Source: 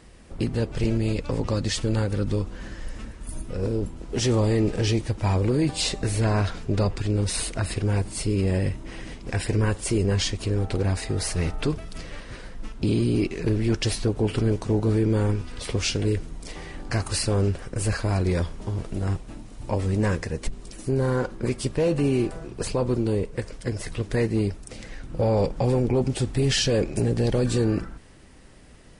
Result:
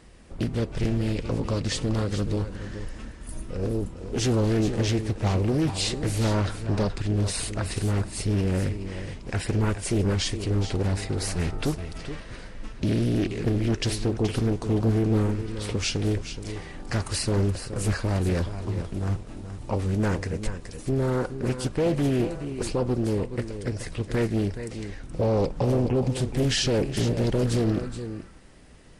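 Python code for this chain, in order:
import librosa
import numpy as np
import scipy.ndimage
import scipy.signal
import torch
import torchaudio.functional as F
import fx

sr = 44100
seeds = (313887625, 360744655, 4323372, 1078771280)

p1 = x + fx.echo_single(x, sr, ms=424, db=-10.5, dry=0)
p2 = fx.doppler_dist(p1, sr, depth_ms=0.58)
y = F.gain(torch.from_numpy(p2), -1.5).numpy()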